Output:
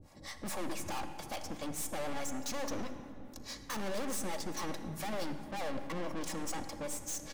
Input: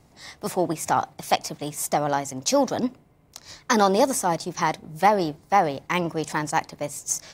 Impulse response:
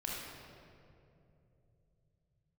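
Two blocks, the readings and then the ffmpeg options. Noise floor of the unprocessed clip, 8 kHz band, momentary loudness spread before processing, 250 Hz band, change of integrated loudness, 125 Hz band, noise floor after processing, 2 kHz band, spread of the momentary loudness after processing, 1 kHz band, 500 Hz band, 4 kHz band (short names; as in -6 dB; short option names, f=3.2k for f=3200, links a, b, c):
-57 dBFS, -11.5 dB, 10 LU, -13.0 dB, -15.5 dB, -13.0 dB, -51 dBFS, -14.0 dB, 7 LU, -19.5 dB, -16.0 dB, -11.5 dB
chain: -filter_complex "[0:a]lowshelf=f=440:g=5.5,aecho=1:1:3.6:0.47,acrossover=split=560[a][b];[a]aeval=exprs='val(0)*(1-1/2+1/2*cos(2*PI*4.7*n/s))':c=same[c];[b]aeval=exprs='val(0)*(1-1/2-1/2*cos(2*PI*4.7*n/s))':c=same[d];[c][d]amix=inputs=2:normalize=0,aeval=exprs='(tanh(89.1*val(0)+0.45)-tanh(0.45))/89.1':c=same,asplit=2[e][f];[1:a]atrim=start_sample=2205,asetrate=30870,aresample=44100[g];[f][g]afir=irnorm=-1:irlink=0,volume=-10dB[h];[e][h]amix=inputs=2:normalize=0"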